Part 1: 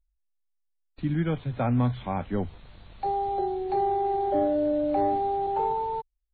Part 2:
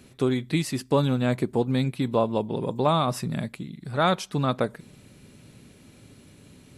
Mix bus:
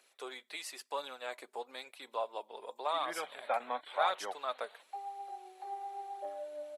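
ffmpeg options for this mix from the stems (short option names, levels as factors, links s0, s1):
-filter_complex "[0:a]adelay=1900,volume=0.794[s0];[1:a]volume=0.316,asplit=2[s1][s2];[s2]apad=whole_len=363045[s3];[s0][s3]sidechaingate=range=0.224:threshold=0.00316:ratio=16:detection=peak[s4];[s4][s1]amix=inputs=2:normalize=0,highpass=f=580:w=0.5412,highpass=f=580:w=1.3066,aphaser=in_gain=1:out_gain=1:delay=5:decay=0.35:speed=0.96:type=triangular"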